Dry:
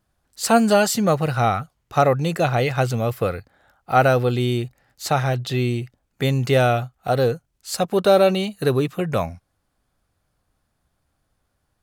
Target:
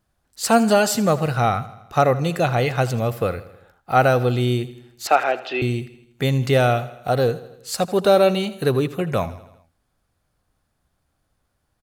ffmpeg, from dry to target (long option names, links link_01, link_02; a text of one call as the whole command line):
ffmpeg -i in.wav -filter_complex "[0:a]asettb=1/sr,asplit=3[link_01][link_02][link_03];[link_01]atrim=end=5.074[link_04];[link_02]atrim=start=5.07:end=5.62,asetpts=PTS-STARTPTS,afade=type=in:duration=0.004:curve=qsin,afade=type=out:start_time=0.546:duration=0.004:curve=qsin,highpass=frequency=310:width=0.5412,highpass=frequency=310:width=1.3066,equalizer=frequency=320:width_type=q:width=4:gain=4,equalizer=frequency=700:width_type=q:width=4:gain=7,equalizer=frequency=1400:width_type=q:width=4:gain=6,equalizer=frequency=2600:width_type=q:width=4:gain=8,equalizer=frequency=3900:width_type=q:width=4:gain=-6,lowpass=frequency=4500:width=0.5412,lowpass=frequency=4500:width=1.3066[link_05];[link_03]atrim=start=5.616[link_06];[link_04][link_05]acrossfade=duration=0.004:curve1=hsin:curve2=qsin[link_07];[link_07][link_06]acrossfade=duration=0.004:curve1=qsin:curve2=hsin,aecho=1:1:81|162|243|324|405:0.141|0.0819|0.0475|0.0276|0.016" out.wav